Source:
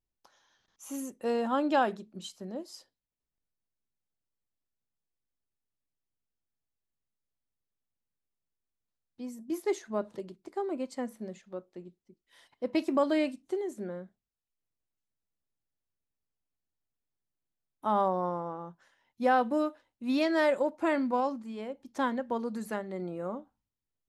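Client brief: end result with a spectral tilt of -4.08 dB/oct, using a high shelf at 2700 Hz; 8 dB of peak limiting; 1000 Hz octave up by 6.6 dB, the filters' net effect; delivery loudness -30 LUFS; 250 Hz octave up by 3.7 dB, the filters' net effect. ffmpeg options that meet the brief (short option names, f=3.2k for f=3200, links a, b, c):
-af "equalizer=f=250:t=o:g=4,equalizer=f=1k:t=o:g=7.5,highshelf=f=2.7k:g=6,alimiter=limit=-17.5dB:level=0:latency=1"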